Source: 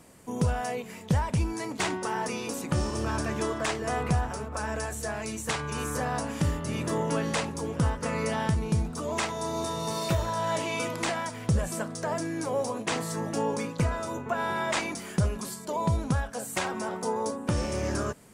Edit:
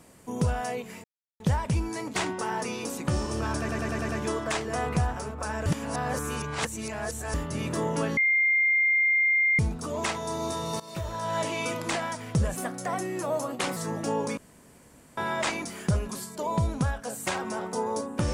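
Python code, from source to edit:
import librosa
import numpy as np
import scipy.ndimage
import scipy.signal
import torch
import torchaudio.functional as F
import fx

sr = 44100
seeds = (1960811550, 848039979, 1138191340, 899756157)

y = fx.edit(x, sr, fx.insert_silence(at_s=1.04, length_s=0.36),
    fx.stutter(start_s=3.23, slice_s=0.1, count=6),
    fx.reverse_span(start_s=4.8, length_s=1.68),
    fx.bleep(start_s=7.31, length_s=1.42, hz=2110.0, db=-19.5),
    fx.fade_in_from(start_s=9.94, length_s=0.58, floor_db=-18.0),
    fx.speed_span(start_s=11.7, length_s=1.36, speed=1.13),
    fx.room_tone_fill(start_s=13.67, length_s=0.8), tone=tone)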